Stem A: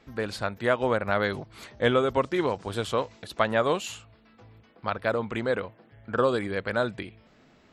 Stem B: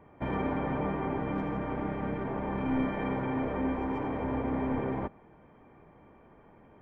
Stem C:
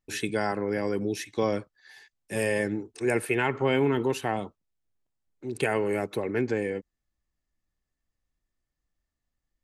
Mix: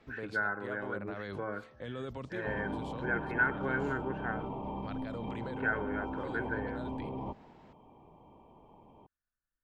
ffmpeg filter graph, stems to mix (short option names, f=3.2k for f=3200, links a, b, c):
-filter_complex "[0:a]volume=-3dB[a];[1:a]firequalizer=gain_entry='entry(570,0);entry(970,7);entry(1600,-28);entry(2700,7)':delay=0.05:min_phase=1,adelay=2250,volume=-2dB[b];[2:a]lowpass=f=1.5k:t=q:w=12,bandreject=f=73.53:t=h:w=4,bandreject=f=147.06:t=h:w=4,bandreject=f=220.59:t=h:w=4,bandreject=f=294.12:t=h:w=4,bandreject=f=367.65:t=h:w=4,bandreject=f=441.18:t=h:w=4,bandreject=f=514.71:t=h:w=4,bandreject=f=588.24:t=h:w=4,bandreject=f=661.77:t=h:w=4,bandreject=f=735.3:t=h:w=4,bandreject=f=808.83:t=h:w=4,bandreject=f=882.36:t=h:w=4,bandreject=f=955.89:t=h:w=4,bandreject=f=1.02942k:t=h:w=4,bandreject=f=1.10295k:t=h:w=4,bandreject=f=1.17648k:t=h:w=4,bandreject=f=1.25001k:t=h:w=4,bandreject=f=1.32354k:t=h:w=4,volume=-13dB,asplit=2[c][d];[d]apad=whole_len=340786[e];[a][e]sidechaincompress=threshold=-47dB:ratio=6:attack=29:release=390[f];[f][b]amix=inputs=2:normalize=0,acrossover=split=260|3000[g][h][i];[h]acompressor=threshold=-35dB:ratio=6[j];[g][j][i]amix=inputs=3:normalize=0,alimiter=level_in=6.5dB:limit=-24dB:level=0:latency=1:release=40,volume=-6.5dB,volume=0dB[k];[c][k]amix=inputs=2:normalize=0,highshelf=f=4.5k:g=-10"